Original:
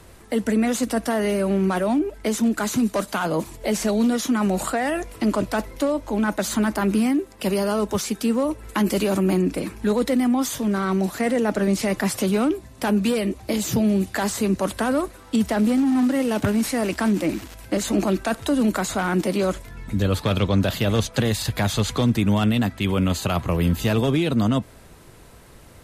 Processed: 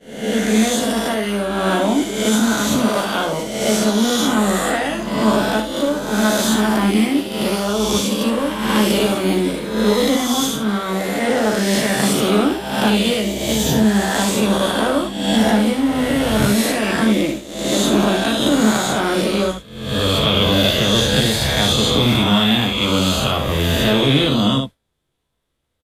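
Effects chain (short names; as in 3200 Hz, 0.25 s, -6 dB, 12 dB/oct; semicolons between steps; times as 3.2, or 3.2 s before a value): spectral swells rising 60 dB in 2.04 s; expander -16 dBFS; bell 3400 Hz +11.5 dB 0.33 oct; early reflections 14 ms -4.5 dB, 59 ms -8.5 dB, 74 ms -7.5 dB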